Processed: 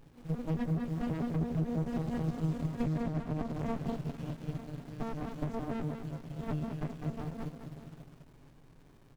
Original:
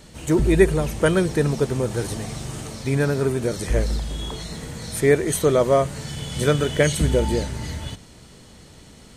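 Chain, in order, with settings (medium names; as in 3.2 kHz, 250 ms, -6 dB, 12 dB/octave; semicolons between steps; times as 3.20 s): vocoder on a broken chord bare fifth, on D#3, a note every 112 ms; Doppler pass-by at 3.08 s, 10 m/s, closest 7.9 m; added noise pink -59 dBFS; comb 7.3 ms, depth 85%; compression 6:1, threshold -31 dBFS, peak gain reduction 19 dB; on a send: feedback delay 203 ms, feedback 45%, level -5 dB; on the sum: dynamic bell 360 Hz, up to +3 dB, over -39 dBFS, Q 0.71; sliding maximum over 65 samples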